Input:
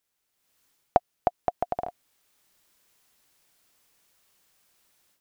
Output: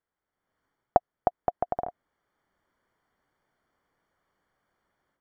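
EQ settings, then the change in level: Savitzky-Golay filter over 41 samples; 0.0 dB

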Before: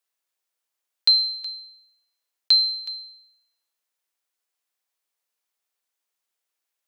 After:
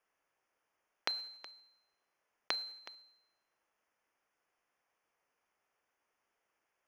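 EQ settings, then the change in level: boxcar filter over 11 samples; +10.0 dB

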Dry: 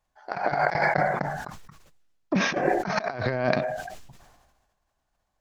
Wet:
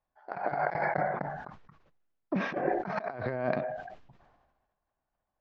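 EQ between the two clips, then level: distance through air 190 m; bass shelf 140 Hz -7 dB; treble shelf 2.7 kHz -11 dB; -4.0 dB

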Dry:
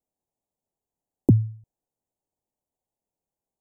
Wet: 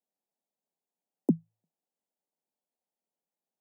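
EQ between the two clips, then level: rippled Chebyshev high-pass 160 Hz, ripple 3 dB; -3.5 dB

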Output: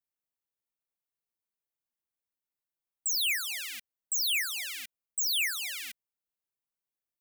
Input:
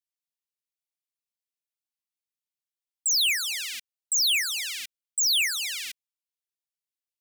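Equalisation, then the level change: peaking EQ 4.9 kHz -10.5 dB 2.6 oct; +2.5 dB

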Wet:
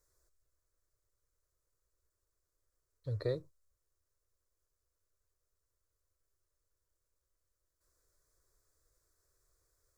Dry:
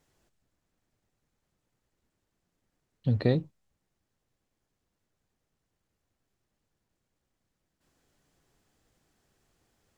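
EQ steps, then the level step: peaking EQ 220 Hz -15 dB 2 oct; peaking EQ 1.9 kHz -9.5 dB 1.4 oct; static phaser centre 790 Hz, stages 6; +1.5 dB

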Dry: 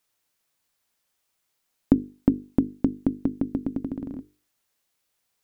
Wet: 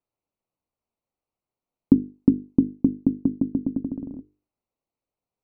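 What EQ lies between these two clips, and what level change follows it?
dynamic bell 200 Hz, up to +7 dB, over -33 dBFS, Q 0.76; boxcar filter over 26 samples; -2.0 dB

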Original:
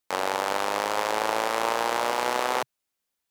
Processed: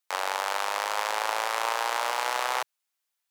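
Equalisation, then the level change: high-pass 770 Hz 12 dB/octave; 0.0 dB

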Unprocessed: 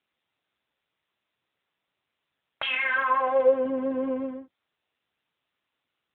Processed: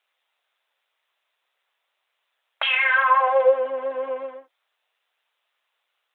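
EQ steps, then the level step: high-pass 540 Hz 24 dB/octave; +6.5 dB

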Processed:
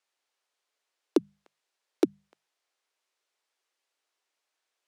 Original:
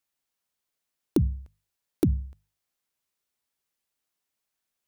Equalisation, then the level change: high-pass 360 Hz 24 dB/octave; distance through air 65 m; +6.0 dB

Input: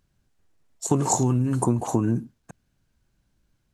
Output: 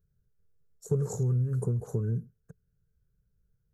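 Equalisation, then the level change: FFT filter 170 Hz 0 dB, 300 Hz -23 dB, 440 Hz +2 dB, 660 Hz -19 dB, 950 Hz -24 dB, 1.4 kHz -9 dB, 2.7 kHz -28 dB, 5.6 kHz -15 dB, 8.8 kHz -16 dB, 13 kHz -4 dB; -2.5 dB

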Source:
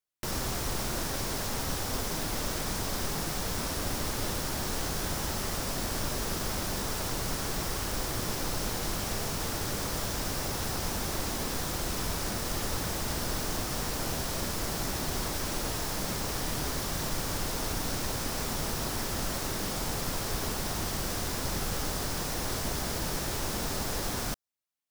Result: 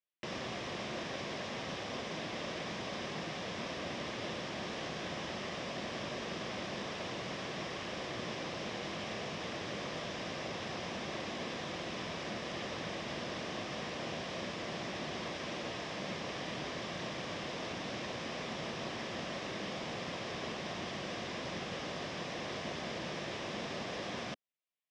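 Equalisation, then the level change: cabinet simulation 220–4300 Hz, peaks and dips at 280 Hz -6 dB, 420 Hz -5 dB, 870 Hz -8 dB, 1.4 kHz -10 dB, 4.3 kHz -8 dB; 0.0 dB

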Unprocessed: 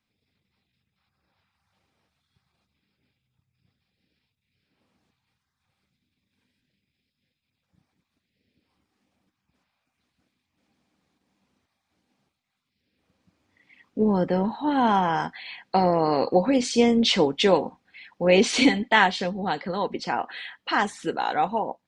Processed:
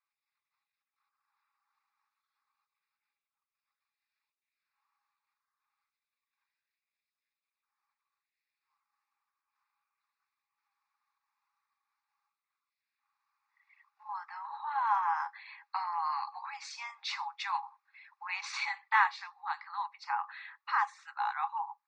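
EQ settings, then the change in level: rippled Chebyshev high-pass 800 Hz, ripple 9 dB; distance through air 150 m; static phaser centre 1.3 kHz, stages 4; +3.5 dB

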